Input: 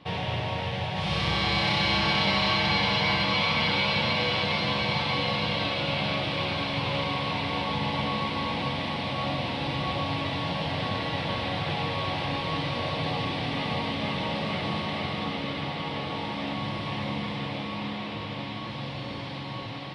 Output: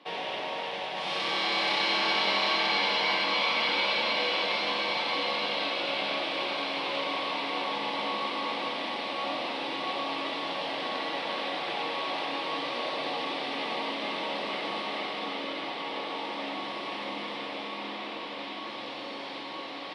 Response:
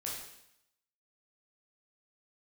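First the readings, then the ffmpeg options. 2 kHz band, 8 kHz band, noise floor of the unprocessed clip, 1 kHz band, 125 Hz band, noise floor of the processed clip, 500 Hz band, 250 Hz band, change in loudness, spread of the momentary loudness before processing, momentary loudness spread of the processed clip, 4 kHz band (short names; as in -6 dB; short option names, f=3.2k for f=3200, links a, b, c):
-1.5 dB, -1.0 dB, -36 dBFS, -1.0 dB, -23.0 dB, -39 dBFS, -1.5 dB, -8.0 dB, -2.0 dB, 10 LU, 11 LU, -1.5 dB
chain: -filter_complex "[0:a]highpass=f=280:w=0.5412,highpass=f=280:w=1.3066,areverse,acompressor=mode=upward:threshold=-33dB:ratio=2.5,areverse,asplit=8[a][b][c][d][e][f][g][h];[b]adelay=88,afreqshift=43,volume=-9.5dB[i];[c]adelay=176,afreqshift=86,volume=-14.1dB[j];[d]adelay=264,afreqshift=129,volume=-18.7dB[k];[e]adelay=352,afreqshift=172,volume=-23.2dB[l];[f]adelay=440,afreqshift=215,volume=-27.8dB[m];[g]adelay=528,afreqshift=258,volume=-32.4dB[n];[h]adelay=616,afreqshift=301,volume=-37dB[o];[a][i][j][k][l][m][n][o]amix=inputs=8:normalize=0,volume=-2dB"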